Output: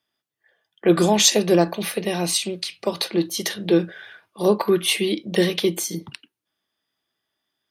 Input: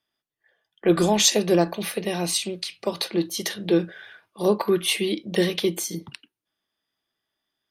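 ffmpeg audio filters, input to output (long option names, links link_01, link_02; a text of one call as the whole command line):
ffmpeg -i in.wav -af "highpass=57,volume=2.5dB" out.wav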